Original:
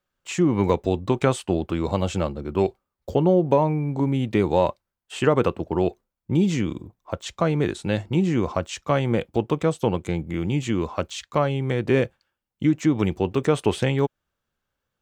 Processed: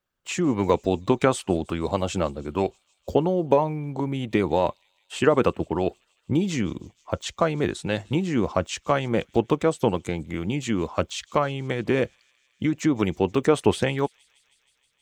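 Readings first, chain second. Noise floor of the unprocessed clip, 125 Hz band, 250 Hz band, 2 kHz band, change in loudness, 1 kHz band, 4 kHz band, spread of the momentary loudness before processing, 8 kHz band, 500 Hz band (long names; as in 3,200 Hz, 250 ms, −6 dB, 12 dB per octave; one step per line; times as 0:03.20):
−83 dBFS, −4.5 dB, −2.0 dB, +1.0 dB, −1.5 dB, +0.5 dB, +1.0 dB, 7 LU, +1.5 dB, −0.5 dB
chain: harmonic and percussive parts rebalanced harmonic −8 dB
on a send: delay with a high-pass on its return 158 ms, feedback 78%, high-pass 3,800 Hz, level −22.5 dB
on the sum: level +2 dB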